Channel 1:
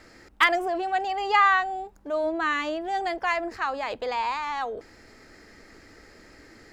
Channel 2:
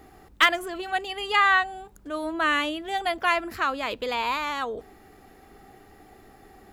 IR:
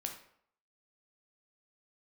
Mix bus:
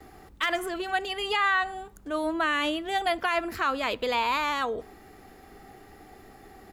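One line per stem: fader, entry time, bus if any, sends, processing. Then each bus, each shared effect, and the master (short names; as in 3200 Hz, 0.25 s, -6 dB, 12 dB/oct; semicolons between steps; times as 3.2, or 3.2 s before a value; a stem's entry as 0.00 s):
-13.0 dB, 0.00 s, no send, elliptic high-pass 710 Hz
+0.5 dB, 4.7 ms, send -17.5 dB, dry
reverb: on, RT60 0.65 s, pre-delay 10 ms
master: limiter -16 dBFS, peak gain reduction 11.5 dB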